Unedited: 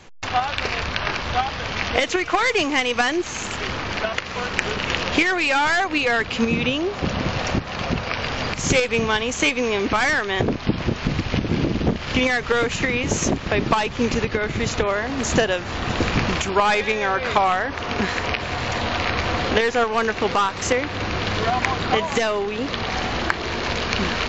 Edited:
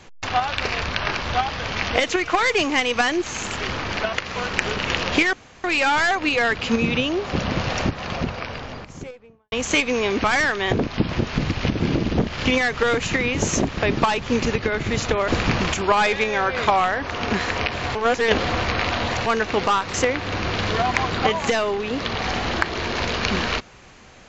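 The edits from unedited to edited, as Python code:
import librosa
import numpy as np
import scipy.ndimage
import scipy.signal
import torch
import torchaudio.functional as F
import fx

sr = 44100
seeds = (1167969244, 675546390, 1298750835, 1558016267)

y = fx.studio_fade_out(x, sr, start_s=7.47, length_s=1.74)
y = fx.edit(y, sr, fx.insert_room_tone(at_s=5.33, length_s=0.31),
    fx.cut(start_s=14.97, length_s=0.99),
    fx.reverse_span(start_s=18.63, length_s=1.31), tone=tone)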